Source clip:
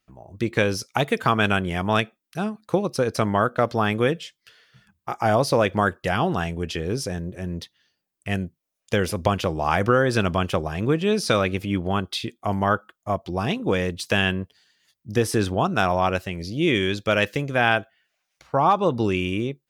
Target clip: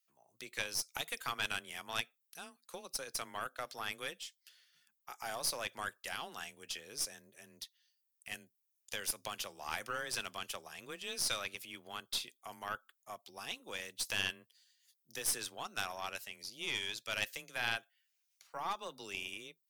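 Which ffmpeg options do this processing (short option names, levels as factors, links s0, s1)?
-af "afreqshift=21,aderivative,aeval=exprs='0.178*(cos(1*acos(clip(val(0)/0.178,-1,1)))-cos(1*PI/2))+0.0251*(cos(4*acos(clip(val(0)/0.178,-1,1)))-cos(4*PI/2))':c=same,volume=0.708"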